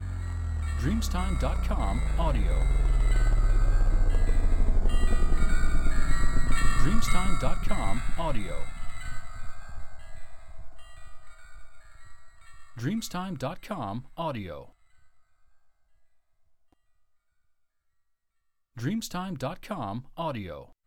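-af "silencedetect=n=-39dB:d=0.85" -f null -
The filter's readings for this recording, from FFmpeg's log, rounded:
silence_start: 14.63
silence_end: 18.77 | silence_duration: 4.14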